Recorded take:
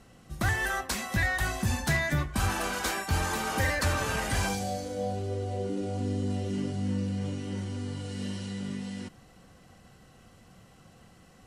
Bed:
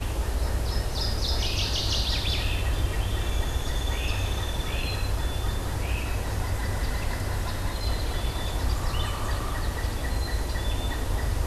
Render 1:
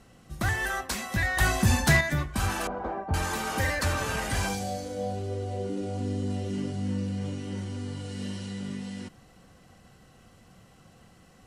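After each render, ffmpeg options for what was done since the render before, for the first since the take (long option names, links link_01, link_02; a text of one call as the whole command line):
ffmpeg -i in.wav -filter_complex "[0:a]asettb=1/sr,asplit=3[link_01][link_02][link_03];[link_01]atrim=end=1.374[link_04];[link_02]atrim=start=1.37:end=2.01,asetpts=PTS-STARTPTS,afade=type=in:duration=0.004:curve=qsin,afade=type=out:start_time=0.636:duration=0.004:curve=qsin,acontrast=59[link_05];[link_03]atrim=start=2.006[link_06];[link_04][link_05]acrossfade=duration=0.004:curve1=hsin:curve2=qsin[link_07];[link_07][link_06]acrossfade=duration=0.004:curve1=qsin:curve2=hsin,asettb=1/sr,asplit=3[link_08][link_09][link_10];[link_08]atrim=end=2.674[link_11];[link_09]atrim=start=2.67:end=3.14,asetpts=PTS-STARTPTS,afade=type=in:duration=0.004:curve=qsin,afade=type=out:start_time=0.466:duration=0.004:curve=qsin,lowpass=frequency=740:width_type=q:width=1.6[link_12];[link_10]atrim=start=3.136[link_13];[link_11][link_12]acrossfade=duration=0.004:curve1=hsin:curve2=qsin[link_14];[link_14][link_13]acrossfade=duration=0.004:curve1=qsin:curve2=hsin" out.wav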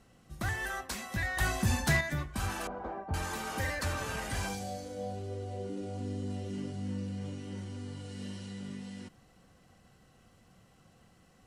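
ffmpeg -i in.wav -af "volume=-6.5dB" out.wav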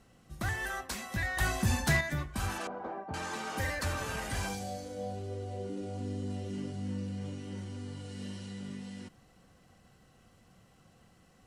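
ffmpeg -i in.wav -filter_complex "[0:a]asettb=1/sr,asplit=3[link_01][link_02][link_03];[link_01]atrim=end=2.584[link_04];[link_02]atrim=start=2.58:end=3.57,asetpts=PTS-STARTPTS,afade=type=in:duration=0.004:curve=qsin,afade=type=out:start_time=0.986:duration=0.004:curve=qsin,highpass=150,lowpass=7800[link_05];[link_03]atrim=start=3.566[link_06];[link_04][link_05]acrossfade=duration=0.004:curve1=hsin:curve2=qsin[link_07];[link_07][link_06]acrossfade=duration=0.004:curve1=qsin:curve2=hsin" out.wav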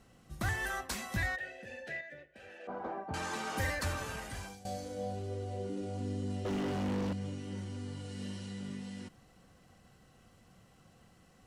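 ffmpeg -i in.wav -filter_complex "[0:a]asplit=3[link_01][link_02][link_03];[link_01]afade=type=out:start_time=1.35:duration=0.02[link_04];[link_02]asplit=3[link_05][link_06][link_07];[link_05]bandpass=frequency=530:width_type=q:width=8,volume=0dB[link_08];[link_06]bandpass=frequency=1840:width_type=q:width=8,volume=-6dB[link_09];[link_07]bandpass=frequency=2480:width_type=q:width=8,volume=-9dB[link_10];[link_08][link_09][link_10]amix=inputs=3:normalize=0,afade=type=in:start_time=1.35:duration=0.02,afade=type=out:start_time=2.67:duration=0.02[link_11];[link_03]afade=type=in:start_time=2.67:duration=0.02[link_12];[link_04][link_11][link_12]amix=inputs=3:normalize=0,asettb=1/sr,asplit=3[link_13][link_14][link_15];[link_13]atrim=end=6.454[link_16];[link_14]atrim=start=6.45:end=7.13,asetpts=PTS-STARTPTS,afade=type=in:duration=0.004:curve=qsin,afade=type=out:start_time=0.676:duration=0.004:curve=qsin,asplit=2[link_17][link_18];[link_18]highpass=frequency=720:poles=1,volume=34dB,asoftclip=type=tanh:threshold=-27dB[link_19];[link_17][link_19]amix=inputs=2:normalize=0,lowpass=frequency=1200:poles=1,volume=-6dB[link_20];[link_15]atrim=start=7.126[link_21];[link_16][link_20]acrossfade=duration=0.004:curve1=hsin:curve2=qsin[link_22];[link_22][link_21]acrossfade=duration=0.004:curve1=qsin:curve2=hsin,asplit=2[link_23][link_24];[link_23]atrim=end=4.65,asetpts=PTS-STARTPTS,afade=type=out:start_time=3.7:duration=0.95:silence=0.149624[link_25];[link_24]atrim=start=4.65,asetpts=PTS-STARTPTS,afade=type=in:duration=0.004:curve=hsin:silence=0.149624[link_26];[link_25][link_26]concat=n=2:v=0:a=1" out.wav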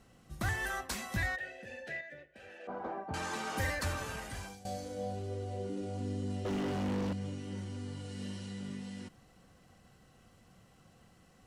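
ffmpeg -i in.wav -af anull out.wav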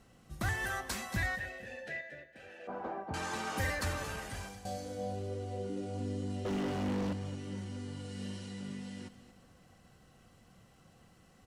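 ffmpeg -i in.wav -af "aecho=1:1:228|456|684:0.211|0.0571|0.0154" out.wav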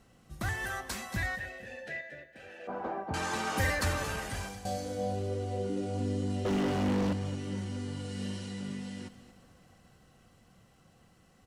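ffmpeg -i in.wav -af "dynaudnorm=framelen=240:gausssize=21:maxgain=5dB" out.wav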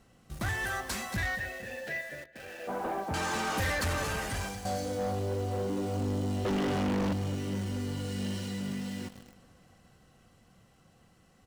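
ffmpeg -i in.wav -filter_complex "[0:a]asplit=2[link_01][link_02];[link_02]acrusher=bits=7:mix=0:aa=0.000001,volume=-3.5dB[link_03];[link_01][link_03]amix=inputs=2:normalize=0,asoftclip=type=tanh:threshold=-26.5dB" out.wav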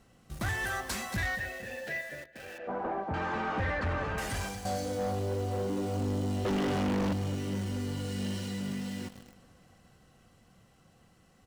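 ffmpeg -i in.wav -filter_complex "[0:a]asettb=1/sr,asplit=3[link_01][link_02][link_03];[link_01]atrim=end=2.584[link_04];[link_02]atrim=start=2.58:end=4.18,asetpts=PTS-STARTPTS,afade=type=in:duration=0.004:curve=qsin,afade=type=out:start_time=1.596:duration=0.004:curve=qsin,lowpass=2000[link_05];[link_03]atrim=start=4.176[link_06];[link_04][link_05]acrossfade=duration=0.004:curve1=hsin:curve2=qsin[link_07];[link_07][link_06]acrossfade=duration=0.004:curve1=qsin:curve2=hsin" out.wav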